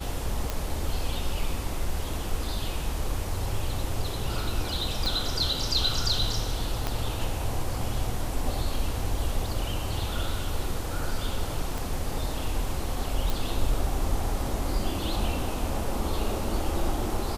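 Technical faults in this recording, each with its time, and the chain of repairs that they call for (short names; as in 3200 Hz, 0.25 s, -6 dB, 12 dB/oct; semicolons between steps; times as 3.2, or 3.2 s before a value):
0.5 pop -13 dBFS
5.06 pop
6.87 pop -13 dBFS
11.78 pop
13.3 pop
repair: de-click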